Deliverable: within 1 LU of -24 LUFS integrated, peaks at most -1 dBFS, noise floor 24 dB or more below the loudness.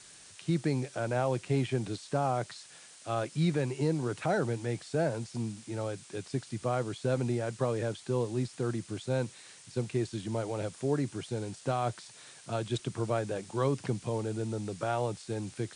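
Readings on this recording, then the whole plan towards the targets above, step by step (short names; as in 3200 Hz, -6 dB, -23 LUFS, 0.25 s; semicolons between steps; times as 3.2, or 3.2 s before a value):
noise floor -53 dBFS; noise floor target -57 dBFS; loudness -33.0 LUFS; peak -18.5 dBFS; loudness target -24.0 LUFS
-> noise print and reduce 6 dB; gain +9 dB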